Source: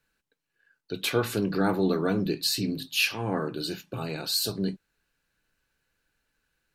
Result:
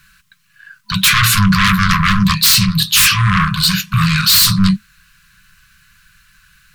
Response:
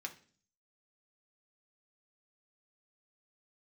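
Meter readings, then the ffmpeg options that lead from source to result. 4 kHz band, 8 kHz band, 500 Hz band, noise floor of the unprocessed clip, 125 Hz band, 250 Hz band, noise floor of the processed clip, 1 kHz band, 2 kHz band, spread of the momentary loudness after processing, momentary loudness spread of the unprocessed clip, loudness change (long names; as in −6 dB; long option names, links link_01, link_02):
+17.5 dB, +20.5 dB, below −35 dB, −82 dBFS, +19.5 dB, +12.5 dB, −56 dBFS, +18.0 dB, +18.5 dB, 6 LU, 9 LU, +16.0 dB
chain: -af "aeval=exprs='0.316*sin(PI/2*7.08*val(0)/0.316)':channel_layout=same,acontrast=72,afftfilt=real='re*(1-between(b*sr/4096,210,1000))':imag='im*(1-between(b*sr/4096,210,1000))':win_size=4096:overlap=0.75,volume=-1.5dB"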